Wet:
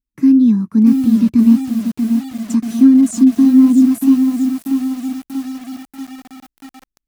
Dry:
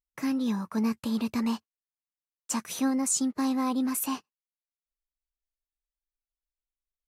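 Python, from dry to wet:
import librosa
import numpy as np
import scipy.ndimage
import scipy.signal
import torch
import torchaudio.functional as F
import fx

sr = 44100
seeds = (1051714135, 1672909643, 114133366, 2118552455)

y = fx.low_shelf_res(x, sr, hz=410.0, db=13.5, q=3.0)
y = fx.echo_crushed(y, sr, ms=637, feedback_pct=55, bits=5, wet_db=-6)
y = y * 10.0 ** (-2.5 / 20.0)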